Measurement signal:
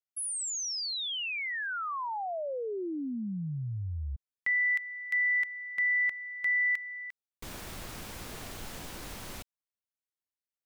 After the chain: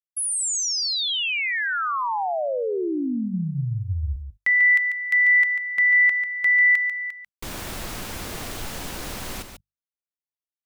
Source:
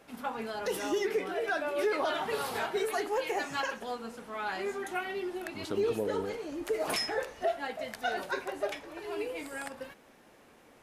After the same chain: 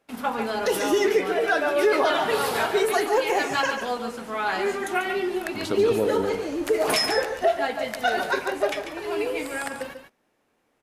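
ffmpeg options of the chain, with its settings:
-af "bandreject=f=50:t=h:w=6,bandreject=f=100:t=h:w=6,bandreject=f=150:t=h:w=6,bandreject=f=200:t=h:w=6,agate=range=0.0891:threshold=0.00224:ratio=16:release=62:detection=rms,aecho=1:1:143:0.376,volume=2.82"

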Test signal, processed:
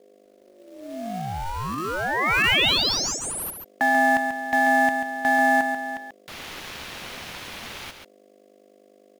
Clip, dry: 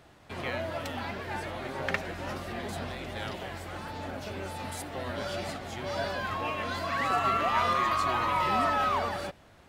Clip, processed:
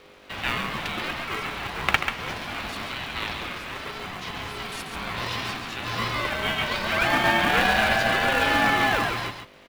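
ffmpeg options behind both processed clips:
-filter_complex "[0:a]highpass=f=200:w=0.5412,highpass=f=200:w=1.3066,equalizer=f=2600:w=0.54:g=13.5,bandreject=f=7800:w=7,aeval=exprs='val(0)+0.00224*(sin(2*PI*50*n/s)+sin(2*PI*2*50*n/s)/2+sin(2*PI*3*50*n/s)/3+sin(2*PI*4*50*n/s)/4+sin(2*PI*5*50*n/s)/5)':c=same,asplit=2[s0][s1];[s1]acrusher=samples=30:mix=1:aa=0.000001,volume=0.422[s2];[s0][s2]amix=inputs=2:normalize=0,aeval=exprs='val(0)*sin(2*PI*460*n/s)':c=same,acrossover=split=690[s3][s4];[s3]acrusher=bits=3:mode=log:mix=0:aa=0.000001[s5];[s5][s4]amix=inputs=2:normalize=0,aecho=1:1:138:0.447"

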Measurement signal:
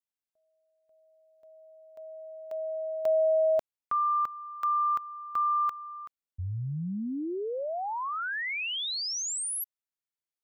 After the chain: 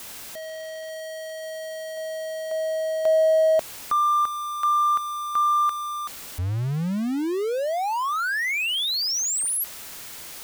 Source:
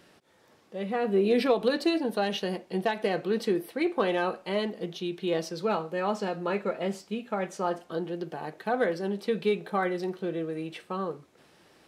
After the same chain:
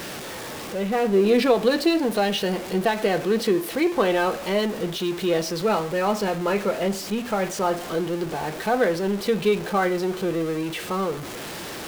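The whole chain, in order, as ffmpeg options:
-af "aeval=exprs='val(0)+0.5*0.0211*sgn(val(0))':c=same,volume=1.68"

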